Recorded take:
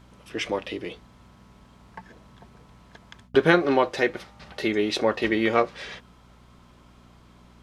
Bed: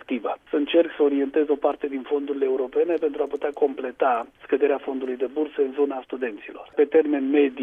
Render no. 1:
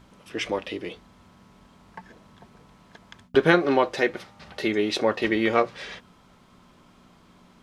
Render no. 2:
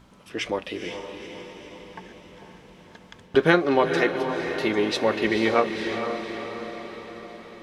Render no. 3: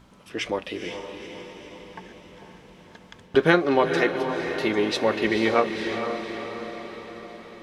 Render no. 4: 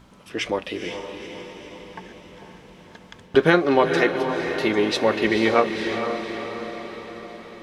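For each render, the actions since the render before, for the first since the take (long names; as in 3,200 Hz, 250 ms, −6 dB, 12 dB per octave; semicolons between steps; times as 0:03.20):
hum removal 60 Hz, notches 2
feedback delay with all-pass diffusion 478 ms, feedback 58%, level −7 dB
no processing that can be heard
level +2.5 dB; brickwall limiter −2 dBFS, peak gain reduction 2.5 dB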